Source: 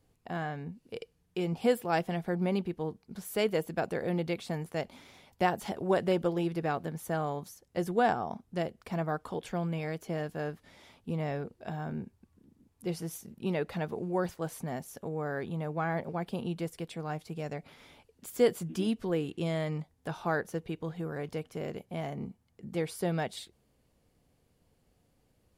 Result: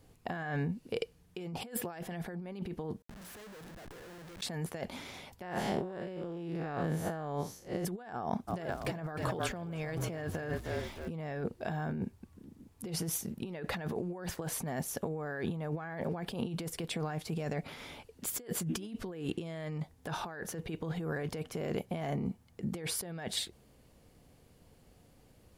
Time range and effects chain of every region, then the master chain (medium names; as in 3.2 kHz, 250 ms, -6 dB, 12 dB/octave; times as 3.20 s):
3.02–4.41 s: hum notches 60/120/180/240/300 Hz + waveshaping leveller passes 5 + Schmitt trigger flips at -28 dBFS
5.42–7.85 s: spectral blur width 124 ms + treble shelf 9.2 kHz -9.5 dB
8.47–11.09 s: frequency-shifting echo 307 ms, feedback 49%, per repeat -36 Hz, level -11.5 dB + crackle 230 per s -53 dBFS
whole clip: dynamic bell 1.7 kHz, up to +7 dB, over -57 dBFS, Q 7; compressor with a negative ratio -40 dBFS, ratio -1; trim +1 dB